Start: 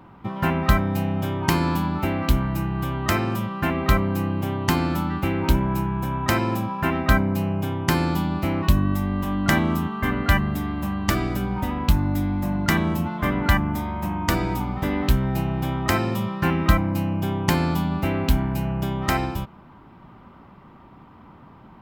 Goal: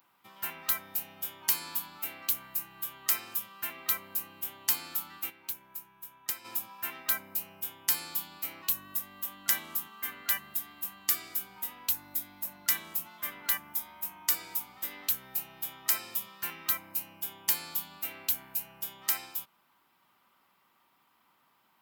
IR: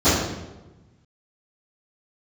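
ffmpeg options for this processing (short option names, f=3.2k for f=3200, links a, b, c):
-filter_complex "[0:a]crystalizer=i=1:c=0,aderivative,asplit=3[a][b][c];[a]afade=t=out:st=5.29:d=0.02[d];[b]aeval=exprs='0.501*(cos(1*acos(clip(val(0)/0.501,-1,1)))-cos(1*PI/2))+0.141*(cos(3*acos(clip(val(0)/0.501,-1,1)))-cos(3*PI/2))+0.0447*(cos(5*acos(clip(val(0)/0.501,-1,1)))-cos(5*PI/2))+0.02*(cos(7*acos(clip(val(0)/0.501,-1,1)))-cos(7*PI/2))':c=same,afade=t=in:st=5.29:d=0.02,afade=t=out:st=6.44:d=0.02[e];[c]afade=t=in:st=6.44:d=0.02[f];[d][e][f]amix=inputs=3:normalize=0,volume=-2dB"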